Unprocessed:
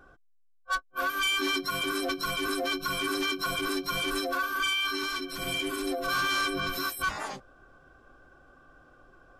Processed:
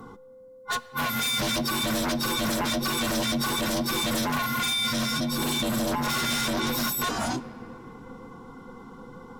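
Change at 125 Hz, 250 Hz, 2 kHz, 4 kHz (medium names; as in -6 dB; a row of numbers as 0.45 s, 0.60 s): +13.0 dB, +7.5 dB, -1.5 dB, +3.0 dB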